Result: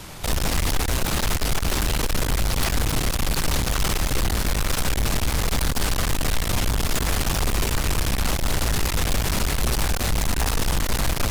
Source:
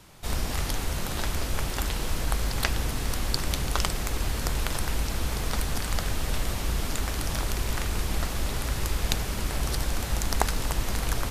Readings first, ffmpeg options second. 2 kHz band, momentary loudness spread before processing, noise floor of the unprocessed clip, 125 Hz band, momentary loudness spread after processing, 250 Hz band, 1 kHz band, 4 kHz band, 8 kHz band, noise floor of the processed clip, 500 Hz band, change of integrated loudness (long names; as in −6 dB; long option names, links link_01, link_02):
+6.0 dB, 3 LU, −32 dBFS, +5.5 dB, 1 LU, +6.5 dB, +5.0 dB, +6.0 dB, +6.5 dB, −26 dBFS, +6.0 dB, +6.0 dB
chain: -af "bandreject=frequency=67.9:width_type=h:width=4,bandreject=frequency=135.8:width_type=h:width=4,bandreject=frequency=203.7:width_type=h:width=4,bandreject=frequency=271.6:width_type=h:width=4,bandreject=frequency=339.5:width_type=h:width=4,bandreject=frequency=407.4:width_type=h:width=4,bandreject=frequency=475.3:width_type=h:width=4,bandreject=frequency=543.2:width_type=h:width=4,bandreject=frequency=611.1:width_type=h:width=4,bandreject=frequency=679:width_type=h:width=4,bandreject=frequency=746.9:width_type=h:width=4,bandreject=frequency=814.8:width_type=h:width=4,bandreject=frequency=882.7:width_type=h:width=4,bandreject=frequency=950.6:width_type=h:width=4,bandreject=frequency=1018.5:width_type=h:width=4,bandreject=frequency=1086.4:width_type=h:width=4,bandreject=frequency=1154.3:width_type=h:width=4,bandreject=frequency=1222.2:width_type=h:width=4,bandreject=frequency=1290.1:width_type=h:width=4,bandreject=frequency=1358:width_type=h:width=4,bandreject=frequency=1425.9:width_type=h:width=4,bandreject=frequency=1493.8:width_type=h:width=4,bandreject=frequency=1561.7:width_type=h:width=4,bandreject=frequency=1629.6:width_type=h:width=4,bandreject=frequency=1697.5:width_type=h:width=4,bandreject=frequency=1765.4:width_type=h:width=4,bandreject=frequency=1833.3:width_type=h:width=4,bandreject=frequency=1901.2:width_type=h:width=4,apsyclip=16dB,aeval=exprs='(tanh(10*val(0)+0.5)-tanh(0.5))/10':channel_layout=same"